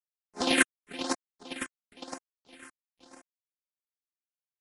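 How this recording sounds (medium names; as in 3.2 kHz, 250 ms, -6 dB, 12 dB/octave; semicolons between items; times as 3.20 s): a quantiser's noise floor 10-bit, dither none; chopped level 9.9 Hz, depth 60%, duty 15%; phasing stages 4, 1 Hz, lowest notch 570–3900 Hz; MP3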